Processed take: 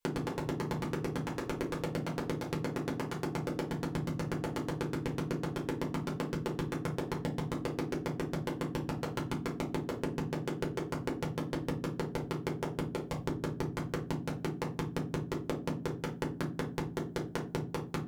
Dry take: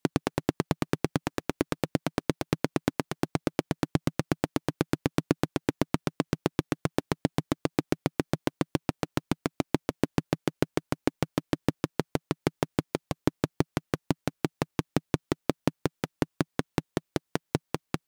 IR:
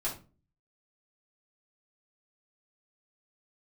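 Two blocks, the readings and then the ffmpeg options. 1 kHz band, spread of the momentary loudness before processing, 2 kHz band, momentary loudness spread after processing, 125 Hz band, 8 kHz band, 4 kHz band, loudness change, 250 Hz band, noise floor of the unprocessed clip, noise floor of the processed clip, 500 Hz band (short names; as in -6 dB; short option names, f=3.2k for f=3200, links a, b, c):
-4.5 dB, 4 LU, -5.0 dB, 2 LU, -4.0 dB, -7.0 dB, -6.0 dB, -5.0 dB, -6.0 dB, -81 dBFS, -44 dBFS, -4.5 dB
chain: -filter_complex "[1:a]atrim=start_sample=2205,asetrate=57330,aresample=44100[a];[0:a][a]afir=irnorm=-1:irlink=0,acompressor=threshold=-30dB:ratio=4,volume=-2dB"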